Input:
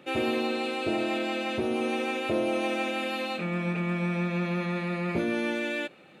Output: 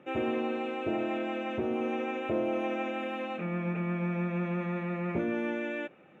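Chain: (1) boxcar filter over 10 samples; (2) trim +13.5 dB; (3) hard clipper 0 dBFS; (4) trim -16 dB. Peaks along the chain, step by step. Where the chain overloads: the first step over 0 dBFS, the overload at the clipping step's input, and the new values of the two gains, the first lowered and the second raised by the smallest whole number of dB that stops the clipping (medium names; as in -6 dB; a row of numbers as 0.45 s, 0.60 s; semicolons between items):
-16.5 dBFS, -3.0 dBFS, -3.0 dBFS, -19.0 dBFS; nothing clips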